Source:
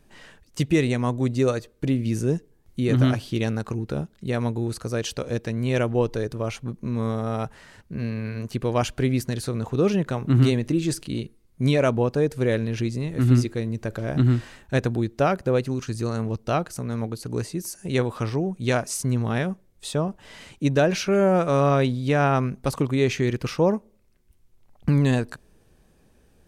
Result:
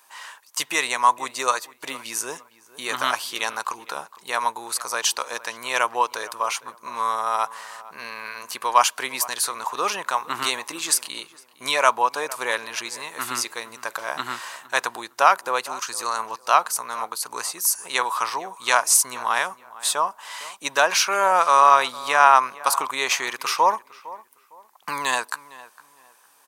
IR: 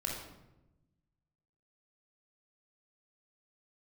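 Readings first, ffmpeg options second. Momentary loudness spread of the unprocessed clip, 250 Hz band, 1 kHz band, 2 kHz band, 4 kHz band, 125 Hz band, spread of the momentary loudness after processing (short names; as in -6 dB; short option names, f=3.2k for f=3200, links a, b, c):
10 LU, -19.0 dB, +12.0 dB, +8.5 dB, +9.0 dB, under -30 dB, 16 LU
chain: -filter_complex "[0:a]highpass=f=1k:t=q:w=4.9,crystalizer=i=2.5:c=0,asplit=2[a][b];[b]adelay=458,lowpass=f=2.1k:p=1,volume=-18dB,asplit=2[c][d];[d]adelay=458,lowpass=f=2.1k:p=1,volume=0.29,asplit=2[e][f];[f]adelay=458,lowpass=f=2.1k:p=1,volume=0.29[g];[a][c][e][g]amix=inputs=4:normalize=0,volume=3dB"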